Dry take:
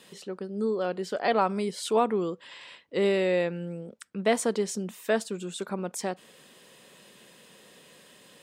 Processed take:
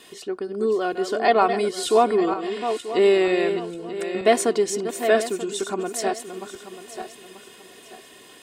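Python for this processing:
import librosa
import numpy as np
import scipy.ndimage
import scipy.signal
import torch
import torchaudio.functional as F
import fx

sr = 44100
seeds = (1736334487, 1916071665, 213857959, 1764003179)

y = fx.reverse_delay_fb(x, sr, ms=468, feedback_pct=53, wet_db=-8.5)
y = y + 0.68 * np.pad(y, (int(2.8 * sr / 1000.0), 0))[:len(y)]
y = y * librosa.db_to_amplitude(4.5)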